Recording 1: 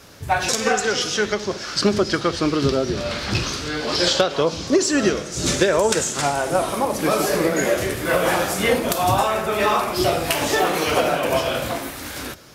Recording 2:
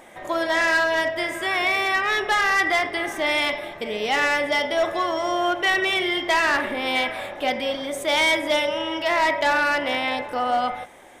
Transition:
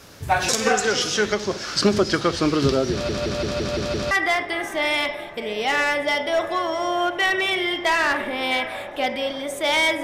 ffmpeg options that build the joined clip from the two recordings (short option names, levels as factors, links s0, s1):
-filter_complex "[0:a]apad=whole_dur=10.03,atrim=end=10.03,asplit=7[s0][s1][s2][s3][s4][s5][s6];[s0]atrim=end=3.092[s7];[s1]atrim=start=2.918:end=3.092[s8];[s2]atrim=start=2.918:end=3.092[s9];[s3]atrim=start=2.918:end=3.092[s10];[s4]atrim=start=2.918:end=3.092[s11];[s5]atrim=start=2.918:end=3.092[s12];[s6]atrim=start=2.918:end=3.092[s13];[1:a]atrim=start=2.548:end=8.47[s14];[s7][s8]acrossfade=d=0.004:c1=hsin:c2=hsin[s15];[s15][s9]acrossfade=d=0.004:c1=hsin:c2=hsin[s16];[s16][s10]acrossfade=d=0.004:c1=hsin:c2=hsin[s17];[s17][s11]acrossfade=d=0.004:c1=hsin:c2=hsin[s18];[s18][s12]acrossfade=d=0.004:c1=hsin:c2=hsin[s19];[s19][s13]acrossfade=d=0.004:c1=hsin:c2=hsin[s20];[s20][s14]acrossfade=d=0.004:c1=hsin:c2=hsin"